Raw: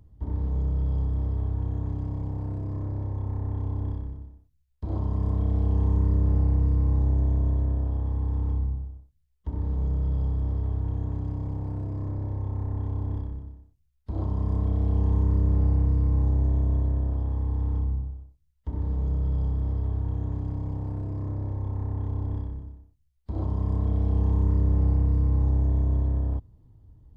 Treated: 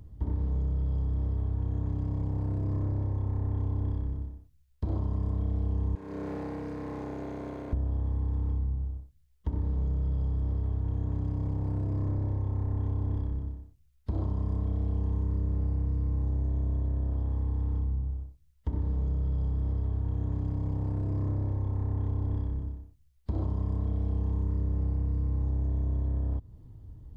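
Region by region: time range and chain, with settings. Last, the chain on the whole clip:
5.95–7.73 median filter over 41 samples + HPF 400 Hz
whole clip: bell 850 Hz -2.5 dB; compressor 6:1, threshold -32 dBFS; gain +5.5 dB

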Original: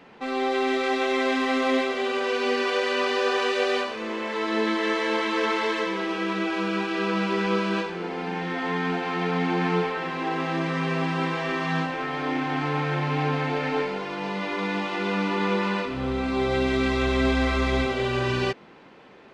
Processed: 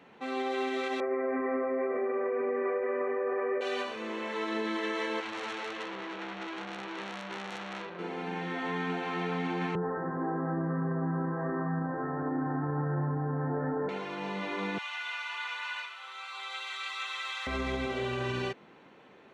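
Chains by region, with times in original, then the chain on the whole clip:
1–3.61 steep low-pass 2200 Hz 72 dB/oct + bell 340 Hz +11 dB 1.4 oct + comb 1.7 ms, depth 53%
5.2–7.99 air absorption 130 m + core saturation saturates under 3600 Hz
9.75–13.89 steep low-pass 1800 Hz 96 dB/oct + tilt -2.5 dB/oct
14.78–17.47 HPF 1100 Hz 24 dB/oct + comb 5.4 ms, depth 59%
whole clip: HPF 69 Hz; notch 4900 Hz, Q 6.3; limiter -18 dBFS; gain -6 dB

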